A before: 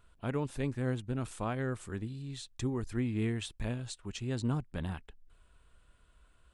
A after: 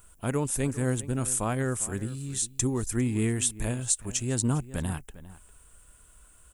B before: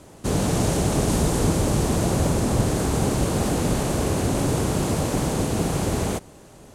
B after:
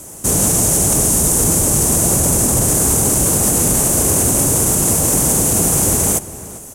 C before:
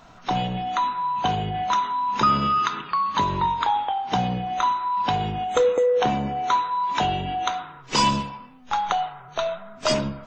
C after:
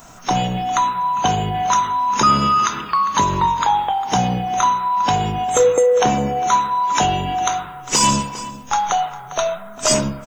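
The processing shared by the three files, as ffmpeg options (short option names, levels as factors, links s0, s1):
-filter_complex "[0:a]aexciter=amount=5.4:drive=7.8:freq=6000,asplit=2[s0][s1];[s1]adelay=402.3,volume=0.158,highshelf=f=4000:g=-9.05[s2];[s0][s2]amix=inputs=2:normalize=0,alimiter=limit=0.299:level=0:latency=1:release=20,volume=1.88"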